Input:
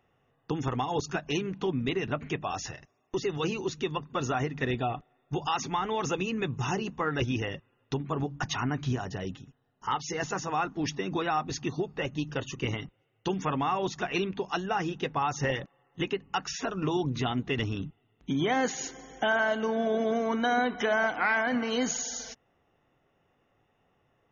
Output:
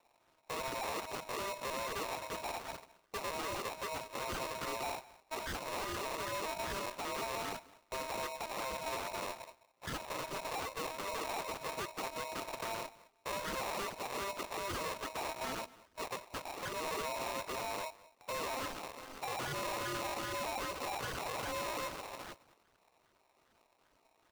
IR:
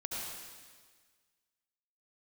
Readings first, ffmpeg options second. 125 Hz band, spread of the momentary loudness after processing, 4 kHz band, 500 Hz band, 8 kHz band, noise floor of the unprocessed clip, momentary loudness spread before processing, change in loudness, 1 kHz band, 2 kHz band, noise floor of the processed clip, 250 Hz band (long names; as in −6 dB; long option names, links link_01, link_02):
−18.0 dB, 7 LU, −5.5 dB, −9.5 dB, can't be measured, −72 dBFS, 10 LU, −9.0 dB, −7.0 dB, −9.5 dB, −73 dBFS, −17.0 dB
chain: -filter_complex "[0:a]alimiter=level_in=1.5dB:limit=-24dB:level=0:latency=1:release=24,volume=-1.5dB,aresample=11025,acrusher=samples=12:mix=1:aa=0.000001:lfo=1:lforange=12:lforate=2.5,aresample=44100,asoftclip=type=tanh:threshold=-34.5dB,asplit=2[link_01][link_02];[link_02]adelay=209.9,volume=-20dB,highshelf=frequency=4000:gain=-4.72[link_03];[link_01][link_03]amix=inputs=2:normalize=0,aeval=exprs='val(0)*sgn(sin(2*PI*790*n/s))':channel_layout=same,volume=-1dB"